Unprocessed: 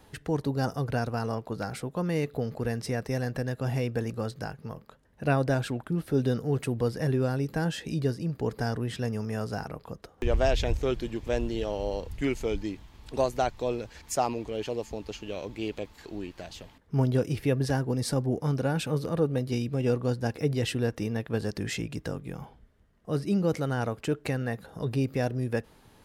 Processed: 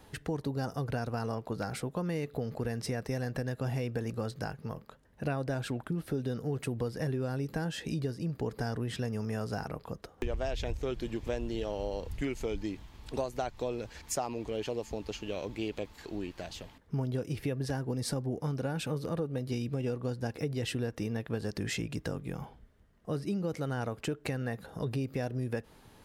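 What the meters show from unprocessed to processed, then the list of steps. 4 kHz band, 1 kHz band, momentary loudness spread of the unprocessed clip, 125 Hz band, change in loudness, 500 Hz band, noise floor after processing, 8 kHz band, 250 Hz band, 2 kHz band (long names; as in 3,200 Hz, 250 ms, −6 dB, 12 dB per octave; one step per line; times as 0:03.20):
−3.5 dB, −6.0 dB, 11 LU, −5.5 dB, −5.5 dB, −6.0 dB, −59 dBFS, −2.5 dB, −5.0 dB, −5.0 dB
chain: downward compressor, threshold −30 dBFS, peak gain reduction 11.5 dB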